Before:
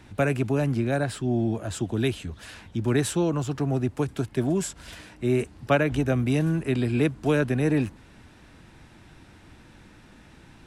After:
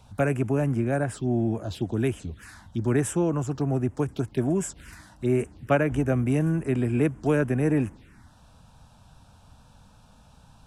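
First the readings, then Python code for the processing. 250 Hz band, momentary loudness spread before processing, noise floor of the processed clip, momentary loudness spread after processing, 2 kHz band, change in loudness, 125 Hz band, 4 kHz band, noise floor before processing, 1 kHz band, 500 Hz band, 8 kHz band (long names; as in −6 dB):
0.0 dB, 8 LU, −55 dBFS, 7 LU, −2.5 dB, −0.5 dB, 0.0 dB, −8.0 dB, −52 dBFS, −0.5 dB, 0.0 dB, −1.5 dB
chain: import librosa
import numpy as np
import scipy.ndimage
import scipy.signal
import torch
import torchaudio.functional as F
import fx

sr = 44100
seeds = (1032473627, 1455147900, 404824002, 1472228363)

y = fx.env_phaser(x, sr, low_hz=290.0, high_hz=4200.0, full_db=-23.0)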